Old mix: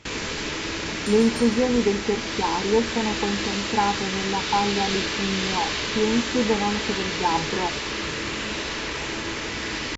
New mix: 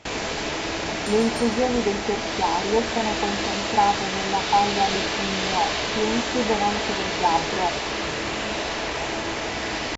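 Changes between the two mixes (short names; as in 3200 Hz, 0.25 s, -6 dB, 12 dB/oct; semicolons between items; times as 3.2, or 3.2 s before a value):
speech -4.0 dB; master: add bell 710 Hz +12.5 dB 0.6 oct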